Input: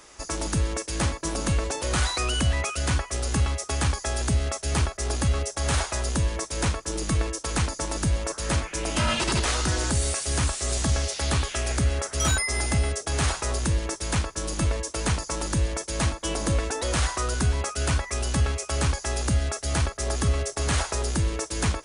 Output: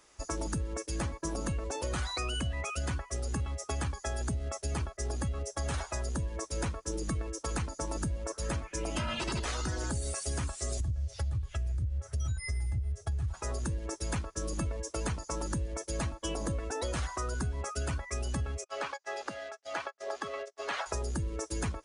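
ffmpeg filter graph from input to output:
-filter_complex "[0:a]asettb=1/sr,asplit=3[a][b][c];[a]atrim=end=10.804[d];[b]atrim=start=10.8:end=13.34,asetpts=PTS-STARTPTS,afade=t=in:d=0.004:c=qsin,afade=t=out:st=2.536:d=0.004:c=qsin,lowshelf=f=150:t=q:w=3:g=12.5,acompressor=threshold=-25dB:ratio=2:attack=3.2:release=140:knee=1:detection=peak[e];[c]atrim=start=13.336[f];[d][e]acrossfade=d=0.004:c1=hsin:c2=qsin[g];[g][f]acrossfade=d=0.004:c1=qsin:c2=hsin,asettb=1/sr,asplit=3[h][i][j];[h]atrim=end=18.644[k];[i]atrim=start=18.64:end=20.86,asetpts=PTS-STARTPTS,afade=t=in:d=0.004:c=qsin,afade=t=out:st=2.216:d=0.004:c=qsin,agate=range=-25dB:threshold=-29dB:ratio=16:release=100:detection=peak,highpass=510,lowpass=4.9k[l];[j]atrim=start=20.856[m];[k][l]acrossfade=d=0.004:c1=hsin:c2=qsin[n];[n][m]acrossfade=d=0.004:c1=qsin:c2=hsin,afftdn=nr=12:nf=-31,acompressor=threshold=-31dB:ratio=6"

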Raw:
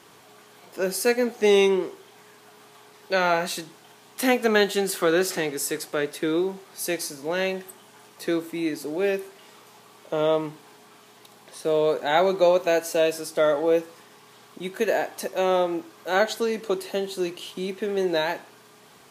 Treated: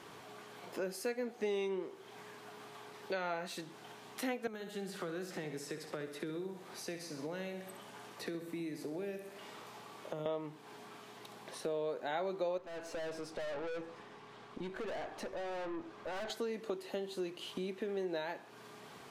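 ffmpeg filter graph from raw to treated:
-filter_complex "[0:a]asettb=1/sr,asplit=3[a][b][c];[a]atrim=end=4.474[d];[b]atrim=start=4.47:end=10.26,asetpts=PTS-STARTPTS,afade=t=in:d=0.004:c=qsin,afade=t=out:st=5.786:d=0.004:c=qsin,acrossover=split=190|6900[e][f][g];[e]acompressor=threshold=-39dB:ratio=4[h];[f]acompressor=threshold=-36dB:ratio=4[i];[g]acompressor=threshold=-48dB:ratio=4[j];[h][i][j]amix=inputs=3:normalize=0,aecho=1:1:65|130|195|260|325|390:0.316|0.174|0.0957|0.0526|0.0289|0.0159,atrim=end_sample=255339[k];[c]atrim=start=10.256[l];[d][k]acrossfade=d=0.004:c1=hsin:c2=qsin[m];[m][l]acrossfade=d=0.004:c1=qsin:c2=hsin,asettb=1/sr,asplit=3[n][o][p];[n]atrim=end=12.584[q];[o]atrim=start=12.58:end=16.3,asetpts=PTS-STARTPTS,afade=t=in:d=0.004:c=qsin,afade=t=out:st=3.716:d=0.004:c=qsin,lowpass=12k,aemphasis=mode=reproduction:type=50kf,aeval=exprs='(tanh(44.7*val(0)+0.35)-tanh(0.35))/44.7':c=same[r];[p]atrim=start=16.296[s];[q][r]acrossfade=d=0.004:c1=hsin:c2=qsin[t];[t][s]acrossfade=d=0.004:c1=qsin:c2=hsin,acompressor=threshold=-40dB:ratio=3,highshelf=f=5.3k:g=-9.5"

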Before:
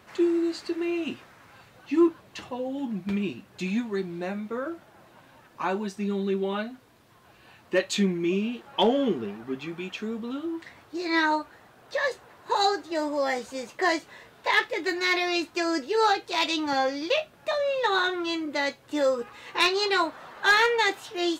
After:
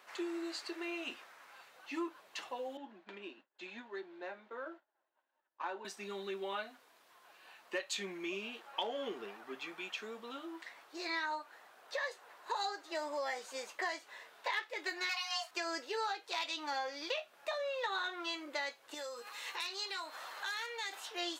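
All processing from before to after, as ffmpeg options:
-filter_complex "[0:a]asettb=1/sr,asplit=3[a][b][c];[a]atrim=end=2.774[d];[b]atrim=start=2.77:end=5.85,asetpts=PTS-STARTPTS,afade=t=in:d=0.004:c=qsin,afade=t=out:st=3.076:d=0.004:c=qsin,agate=range=-33dB:threshold=-42dB:ratio=3:release=100:detection=peak,adynamicsmooth=sensitivity=1:basefreq=2.8k,highpass=f=260:w=0.5412,highpass=f=260:w=1.3066,equalizer=f=470:t=q:w=4:g=-5,equalizer=f=720:t=q:w=4:g=-5,equalizer=f=1.2k:t=q:w=4:g=-7,equalizer=f=2.3k:t=q:w=4:g=-7,equalizer=f=5.4k:t=q:w=4:g=-4,lowpass=f=7.9k:w=0.5412,lowpass=f=7.9k:w=1.3066[e];[c]atrim=start=5.846[f];[d][e]acrossfade=d=0.004:c1=hsin:c2=qsin[g];[g][f]acrossfade=d=0.004:c1=qsin:c2=hsin,asettb=1/sr,asplit=3[h][i][j];[h]atrim=end=15.094[k];[i]atrim=start=15.09:end=15.51,asetpts=PTS-STARTPTS,afade=t=in:d=0.004:c=qsin,afade=t=out:st=0.416:d=0.004:c=qsin,bass=f=250:g=-13,treble=f=4k:g=4,afreqshift=380,asplit=2[l][m];[m]adelay=17,volume=-4.5dB[n];[l][n]amix=inputs=2:normalize=0,atrim=end_sample=18522[o];[j]atrim=start=15.506[p];[k][o]acrossfade=d=0.004:c1=hsin:c2=qsin[q];[q][p]acrossfade=d=0.004:c1=qsin:c2=hsin,asettb=1/sr,asplit=3[r][s][t];[r]atrim=end=18.944[u];[s]atrim=start=18.94:end=20.93,asetpts=PTS-STARTPTS,afade=t=in:d=0.004:c=qsin,afade=t=out:st=1.986:d=0.004:c=qsin,acompressor=threshold=-37dB:ratio=4:attack=3.2:release=140:knee=1:detection=peak,aeval=exprs='val(0)+0.000708*sin(2*PI*4200*n/s)':c=same,highshelf=f=3.5k:g=12[v];[t]atrim=start=20.926[w];[u][v]acrossfade=d=0.004:c1=hsin:c2=qsin[x];[x][w]acrossfade=d=0.004:c1=qsin:c2=hsin,highpass=630,acompressor=threshold=-32dB:ratio=4,volume=-3.5dB"

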